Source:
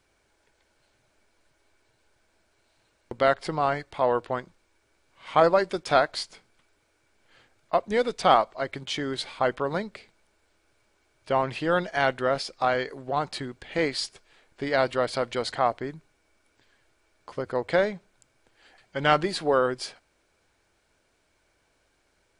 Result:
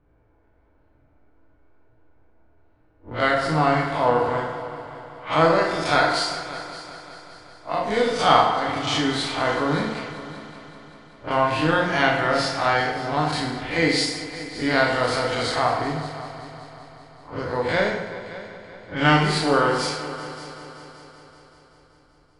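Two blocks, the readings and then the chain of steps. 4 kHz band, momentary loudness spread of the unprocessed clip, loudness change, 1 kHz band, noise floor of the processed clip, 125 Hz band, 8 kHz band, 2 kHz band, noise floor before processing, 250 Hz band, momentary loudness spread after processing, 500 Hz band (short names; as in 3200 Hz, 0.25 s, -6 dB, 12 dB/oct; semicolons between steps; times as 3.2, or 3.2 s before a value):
+7.5 dB, 13 LU, +4.0 dB, +4.5 dB, -59 dBFS, +9.5 dB, +7.5 dB, +7.5 dB, -70 dBFS, +8.0 dB, 19 LU, +2.0 dB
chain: time blur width 96 ms; bell 490 Hz -8 dB 1.7 oct; in parallel at 0 dB: compressor, threshold -43 dBFS, peak gain reduction 21 dB; on the sum: FDN reverb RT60 1.2 s, low-frequency decay 0.7×, high-frequency decay 0.65×, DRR -0.5 dB; low-pass opened by the level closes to 630 Hz, open at -29 dBFS; on a send: multi-head echo 0.191 s, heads all three, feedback 53%, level -18.5 dB; on the sum: gain +6.5 dB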